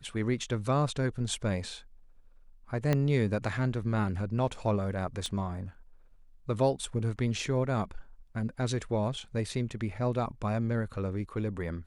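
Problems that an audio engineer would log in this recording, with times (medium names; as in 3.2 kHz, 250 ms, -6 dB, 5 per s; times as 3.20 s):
2.93 s: pop -14 dBFS
5.26 s: pop -23 dBFS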